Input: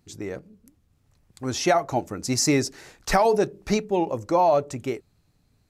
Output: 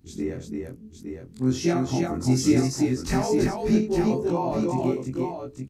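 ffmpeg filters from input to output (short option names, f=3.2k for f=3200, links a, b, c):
-filter_complex "[0:a]afftfilt=real='re':imag='-im':win_size=2048:overlap=0.75,asplit=2[a][b];[b]acompressor=threshold=-36dB:ratio=16,volume=3dB[c];[a][c]amix=inputs=2:normalize=0,lowshelf=f=420:t=q:w=1.5:g=9,aecho=1:1:70|337|862:0.316|0.668|0.473,volume=-6dB"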